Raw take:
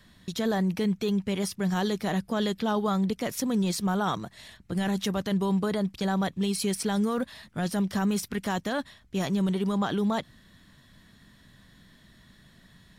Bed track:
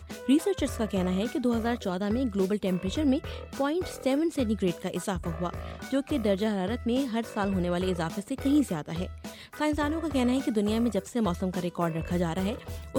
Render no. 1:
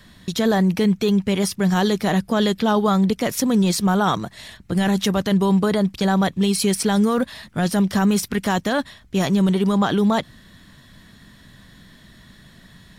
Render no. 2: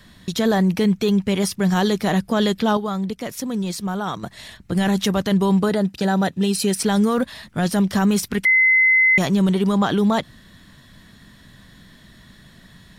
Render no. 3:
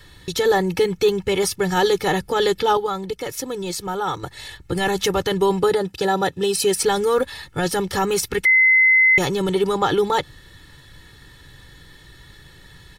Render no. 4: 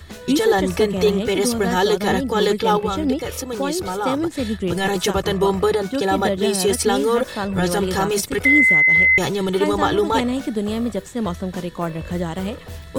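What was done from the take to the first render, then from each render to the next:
trim +8.5 dB
2.77–4.23 s: gain -7 dB; 5.69–6.79 s: comb of notches 1.1 kHz; 8.45–9.18 s: bleep 2.05 kHz -11.5 dBFS
comb 2.3 ms, depth 91%
add bed track +3.5 dB

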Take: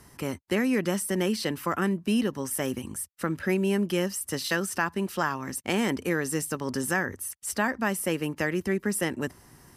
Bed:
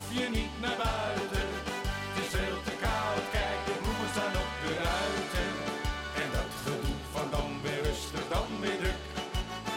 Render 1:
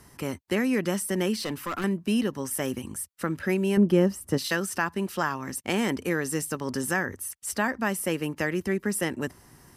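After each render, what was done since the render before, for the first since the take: 1.35–1.84 s: hard clipper -26 dBFS; 3.77–4.38 s: tilt shelf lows +8 dB, about 1.2 kHz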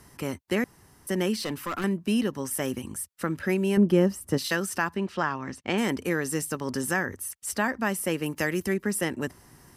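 0.64–1.07 s: room tone; 4.96–5.78 s: low-pass 4.4 kHz; 8.26–8.74 s: treble shelf 5.6 kHz +10 dB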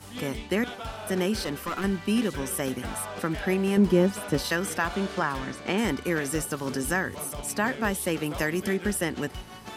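add bed -6 dB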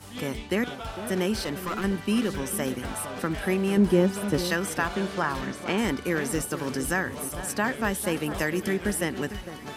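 echo whose repeats swap between lows and highs 453 ms, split 1.7 kHz, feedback 53%, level -11.5 dB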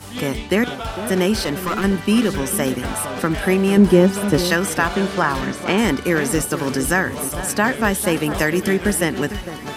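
trim +8.5 dB; peak limiter -2 dBFS, peak gain reduction 1 dB

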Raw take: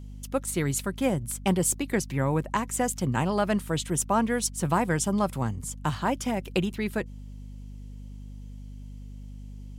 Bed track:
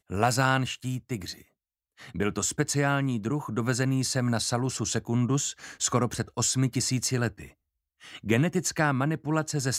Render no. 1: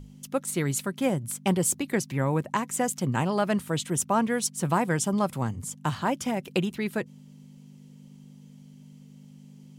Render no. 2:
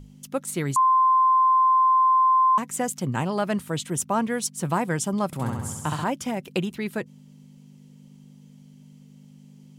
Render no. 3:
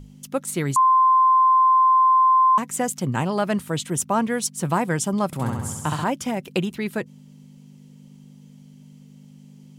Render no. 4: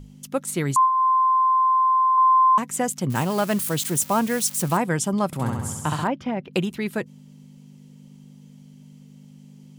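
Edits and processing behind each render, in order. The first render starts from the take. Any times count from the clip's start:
hum notches 50/100 Hz
0.76–2.58 s: bleep 1.04 kHz -15 dBFS; 5.26–6.04 s: flutter echo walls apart 11.4 m, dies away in 1.2 s
trim +2.5 dB
0.84–2.18 s: de-hum 86.49 Hz, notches 17; 3.10–4.77 s: zero-crossing glitches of -23 dBFS; 6.07–6.53 s: distance through air 280 m

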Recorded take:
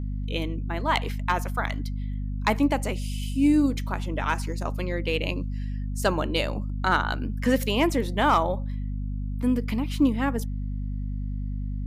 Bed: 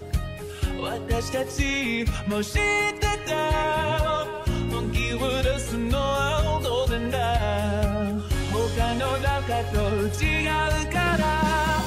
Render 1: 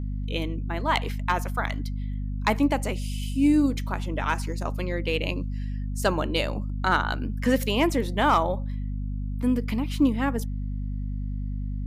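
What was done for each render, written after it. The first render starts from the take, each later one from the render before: no audible change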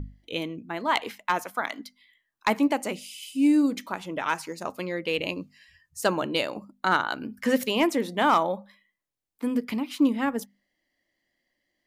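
hum notches 50/100/150/200/250 Hz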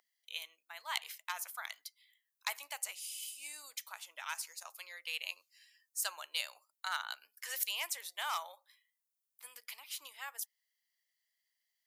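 high-pass 660 Hz 24 dB/octave; differentiator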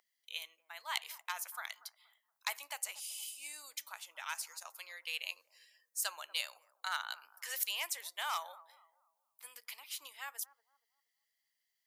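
bucket-brigade echo 236 ms, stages 2048, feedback 34%, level -18.5 dB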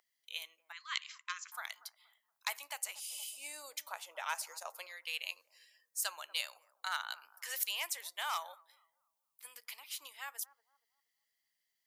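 0.72–1.52 s: brick-wall FIR band-pass 1–7.7 kHz; 3.12–4.87 s: peaking EQ 540 Hz +12.5 dB 1.6 oct; 8.54–9.45 s: peaking EQ 750 Hz -10.5 dB 1.6 oct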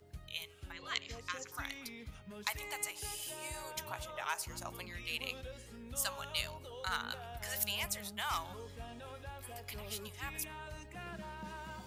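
add bed -24 dB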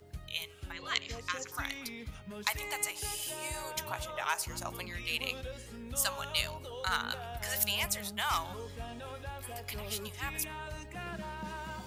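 trim +5 dB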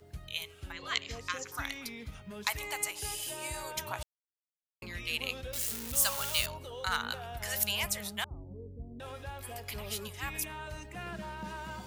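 4.03–4.82 s: mute; 5.53–6.46 s: zero-crossing glitches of -26 dBFS; 8.24–9.00 s: inverse Chebyshev low-pass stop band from 2.5 kHz, stop band 80 dB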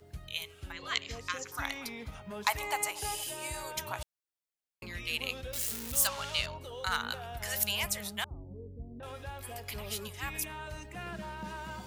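1.62–3.24 s: peaking EQ 830 Hz +8.5 dB 1.4 oct; 6.07–6.61 s: low-pass 4.8 kHz; 8.31–9.03 s: low-pass 1.3 kHz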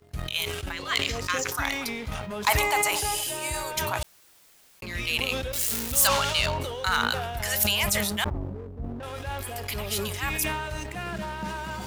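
waveshaping leveller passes 2; decay stretcher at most 32 dB/s

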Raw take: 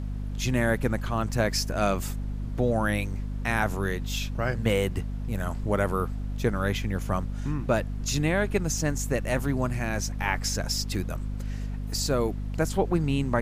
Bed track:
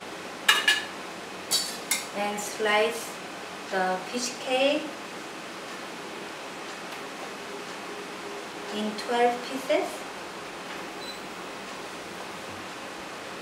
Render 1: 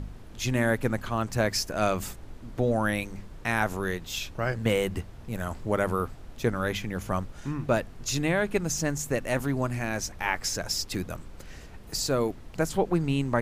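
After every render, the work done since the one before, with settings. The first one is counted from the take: de-hum 50 Hz, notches 5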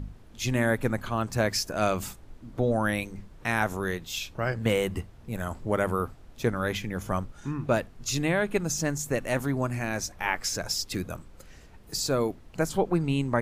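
noise print and reduce 6 dB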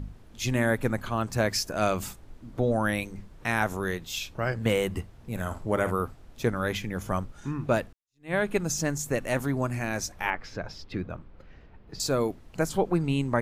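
5.15–5.91 s: flutter echo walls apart 9.3 m, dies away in 0.29 s; 7.93–8.34 s: fade in exponential; 10.30–12.00 s: distance through air 320 m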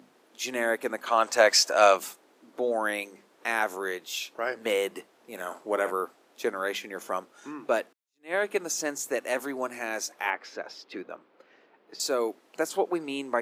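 high-pass 320 Hz 24 dB/octave; 1.07–1.97 s: time-frequency box 490–8700 Hz +8 dB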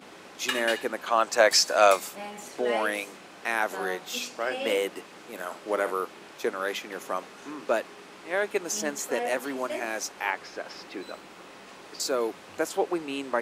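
add bed track -9.5 dB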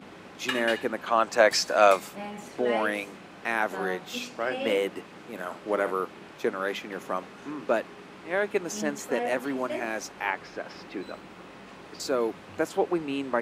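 tone controls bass +9 dB, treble -7 dB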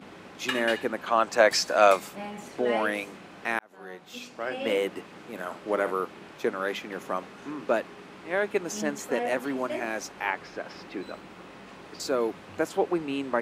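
3.59–4.83 s: fade in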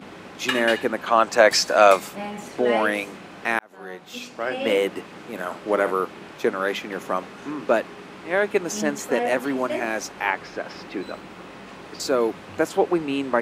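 trim +5.5 dB; peak limiter -2 dBFS, peak gain reduction 2 dB

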